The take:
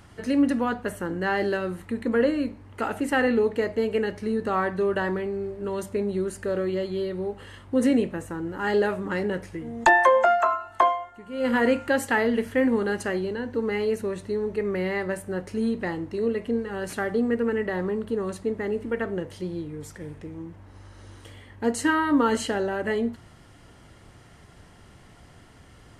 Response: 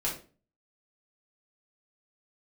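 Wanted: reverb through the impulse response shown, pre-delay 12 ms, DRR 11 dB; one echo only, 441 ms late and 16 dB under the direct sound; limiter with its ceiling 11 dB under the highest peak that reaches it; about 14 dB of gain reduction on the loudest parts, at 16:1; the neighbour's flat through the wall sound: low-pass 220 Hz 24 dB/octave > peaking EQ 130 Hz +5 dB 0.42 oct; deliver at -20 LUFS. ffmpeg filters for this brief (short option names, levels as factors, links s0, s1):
-filter_complex "[0:a]acompressor=threshold=0.0447:ratio=16,alimiter=level_in=1.06:limit=0.0631:level=0:latency=1,volume=0.944,aecho=1:1:441:0.158,asplit=2[s0][s1];[1:a]atrim=start_sample=2205,adelay=12[s2];[s1][s2]afir=irnorm=-1:irlink=0,volume=0.15[s3];[s0][s3]amix=inputs=2:normalize=0,lowpass=f=220:w=0.5412,lowpass=f=220:w=1.3066,equalizer=f=130:t=o:w=0.42:g=5,volume=11.9"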